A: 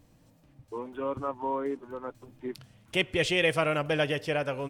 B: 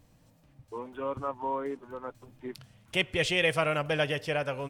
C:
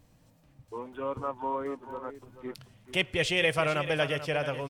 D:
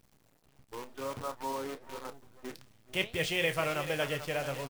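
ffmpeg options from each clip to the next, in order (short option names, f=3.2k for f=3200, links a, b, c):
-af "equalizer=f=320:t=o:w=0.94:g=-4.5"
-af "aecho=1:1:437:0.251"
-filter_complex "[0:a]acrusher=bits=7:dc=4:mix=0:aa=0.000001,flanger=delay=4:depth=6.7:regen=84:speed=1.5:shape=triangular,asplit=2[a][b];[b]adelay=30,volume=-13dB[c];[a][c]amix=inputs=2:normalize=0"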